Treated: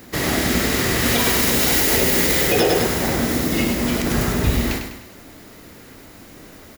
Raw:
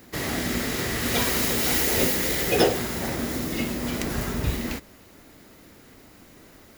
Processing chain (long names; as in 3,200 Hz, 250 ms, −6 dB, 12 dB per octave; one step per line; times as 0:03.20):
on a send: repeating echo 100 ms, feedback 45%, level −7 dB
on the sum: boost into a limiter +13 dB
level −6 dB